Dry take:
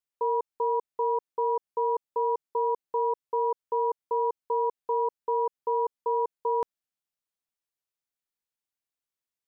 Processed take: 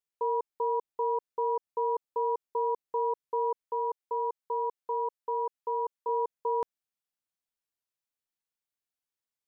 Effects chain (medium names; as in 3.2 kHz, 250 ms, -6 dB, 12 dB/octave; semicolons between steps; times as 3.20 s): 3.64–6.09 s: bass shelf 290 Hz -10.5 dB; trim -2.5 dB